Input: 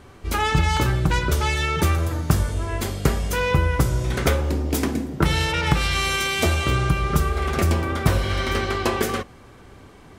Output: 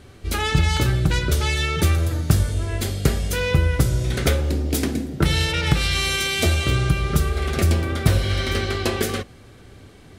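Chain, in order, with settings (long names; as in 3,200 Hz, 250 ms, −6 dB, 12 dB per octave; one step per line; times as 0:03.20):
graphic EQ with 15 bands 100 Hz +4 dB, 1,000 Hz −8 dB, 4,000 Hz +4 dB, 10,000 Hz +3 dB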